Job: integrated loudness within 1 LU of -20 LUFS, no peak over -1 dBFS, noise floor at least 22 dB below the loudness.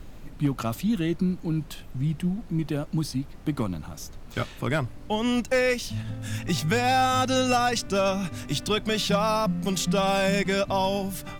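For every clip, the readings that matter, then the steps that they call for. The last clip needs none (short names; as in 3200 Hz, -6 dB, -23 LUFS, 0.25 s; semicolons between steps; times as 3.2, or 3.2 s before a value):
clipped 0.3%; flat tops at -15.5 dBFS; noise floor -43 dBFS; noise floor target -48 dBFS; loudness -26.0 LUFS; peak -15.5 dBFS; loudness target -20.0 LUFS
-> clip repair -15.5 dBFS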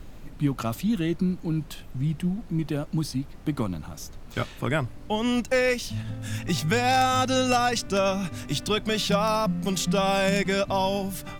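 clipped 0.0%; noise floor -43 dBFS; noise floor target -48 dBFS
-> noise print and reduce 6 dB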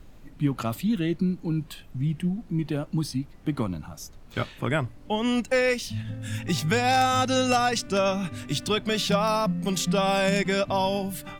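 noise floor -47 dBFS; noise floor target -48 dBFS
-> noise print and reduce 6 dB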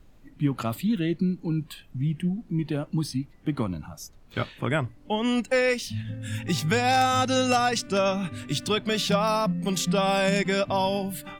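noise floor -52 dBFS; loudness -26.0 LUFS; peak -7.5 dBFS; loudness target -20.0 LUFS
-> gain +6 dB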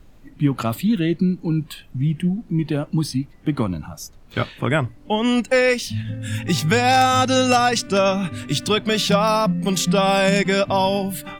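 loudness -20.0 LUFS; peak -1.5 dBFS; noise floor -46 dBFS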